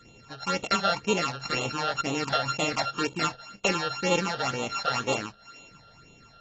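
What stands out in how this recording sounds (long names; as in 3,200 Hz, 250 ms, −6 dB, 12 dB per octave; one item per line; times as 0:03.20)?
a buzz of ramps at a fixed pitch in blocks of 32 samples
phaser sweep stages 8, 2 Hz, lowest notch 290–1,600 Hz
AAC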